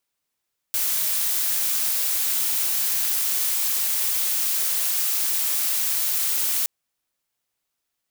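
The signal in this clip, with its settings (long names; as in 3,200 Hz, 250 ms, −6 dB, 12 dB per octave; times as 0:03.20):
noise blue, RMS −23 dBFS 5.92 s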